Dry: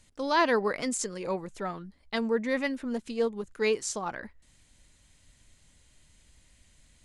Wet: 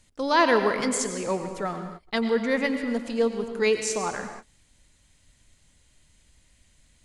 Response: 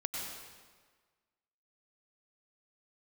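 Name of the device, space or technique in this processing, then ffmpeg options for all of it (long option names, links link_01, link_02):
keyed gated reverb: -filter_complex "[0:a]asplit=3[link_01][link_02][link_03];[1:a]atrim=start_sample=2205[link_04];[link_02][link_04]afir=irnorm=-1:irlink=0[link_05];[link_03]apad=whole_len=310525[link_06];[link_05][link_06]sidechaingate=range=-33dB:threshold=-52dB:ratio=16:detection=peak,volume=-3.5dB[link_07];[link_01][link_07]amix=inputs=2:normalize=0"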